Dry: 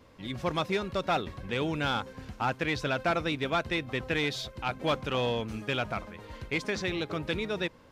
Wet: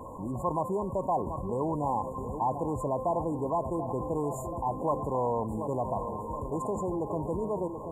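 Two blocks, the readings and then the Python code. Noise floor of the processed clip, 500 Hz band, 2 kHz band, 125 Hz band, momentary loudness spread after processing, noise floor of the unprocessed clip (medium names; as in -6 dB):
-39 dBFS, +1.5 dB, under -40 dB, +0.5 dB, 4 LU, -54 dBFS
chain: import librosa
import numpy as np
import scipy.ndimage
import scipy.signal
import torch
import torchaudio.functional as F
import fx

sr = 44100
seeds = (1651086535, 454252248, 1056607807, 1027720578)

y = fx.brickwall_bandstop(x, sr, low_hz=1100.0, high_hz=6800.0)
y = fx.peak_eq(y, sr, hz=1300.0, db=13.0, octaves=1.6)
y = fx.echo_filtered(y, sr, ms=732, feedback_pct=50, hz=1200.0, wet_db=-14)
y = fx.env_flatten(y, sr, amount_pct=50)
y = y * 10.0 ** (-6.0 / 20.0)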